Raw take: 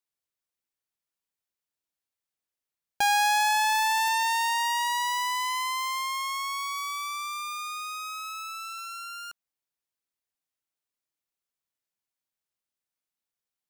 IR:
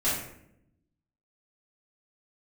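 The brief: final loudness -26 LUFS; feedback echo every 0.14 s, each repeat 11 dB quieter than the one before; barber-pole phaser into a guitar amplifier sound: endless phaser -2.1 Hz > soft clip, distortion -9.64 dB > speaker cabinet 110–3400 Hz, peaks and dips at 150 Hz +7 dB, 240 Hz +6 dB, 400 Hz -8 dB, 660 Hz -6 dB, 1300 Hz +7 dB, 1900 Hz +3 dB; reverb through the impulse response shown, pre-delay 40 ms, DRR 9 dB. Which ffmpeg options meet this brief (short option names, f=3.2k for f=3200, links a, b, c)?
-filter_complex "[0:a]aecho=1:1:140|280|420:0.282|0.0789|0.0221,asplit=2[a][b];[1:a]atrim=start_sample=2205,adelay=40[c];[b][c]afir=irnorm=-1:irlink=0,volume=-19.5dB[d];[a][d]amix=inputs=2:normalize=0,asplit=2[e][f];[f]afreqshift=-2.1[g];[e][g]amix=inputs=2:normalize=1,asoftclip=threshold=-27.5dB,highpass=110,equalizer=f=150:t=q:w=4:g=7,equalizer=f=240:t=q:w=4:g=6,equalizer=f=400:t=q:w=4:g=-8,equalizer=f=660:t=q:w=4:g=-6,equalizer=f=1.3k:t=q:w=4:g=7,equalizer=f=1.9k:t=q:w=4:g=3,lowpass=f=3.4k:w=0.5412,lowpass=f=3.4k:w=1.3066,volume=6dB"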